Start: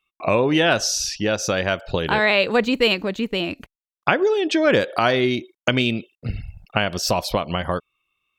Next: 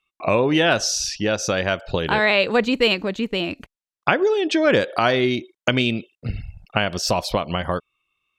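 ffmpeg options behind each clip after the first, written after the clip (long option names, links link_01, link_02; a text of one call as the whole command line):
ffmpeg -i in.wav -af "lowpass=11000" out.wav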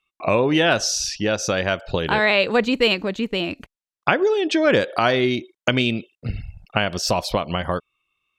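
ffmpeg -i in.wav -af anull out.wav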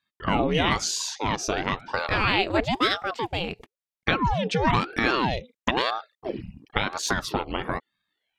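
ffmpeg -i in.wav -af "aeval=exprs='val(0)*sin(2*PI*570*n/s+570*0.8/1*sin(2*PI*1*n/s))':channel_layout=same,volume=-2dB" out.wav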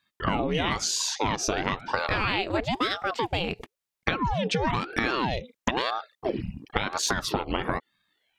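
ffmpeg -i in.wav -af "acompressor=threshold=-29dB:ratio=6,volume=6dB" out.wav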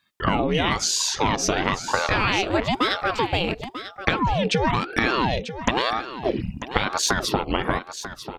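ffmpeg -i in.wav -af "aecho=1:1:942:0.251,volume=4.5dB" out.wav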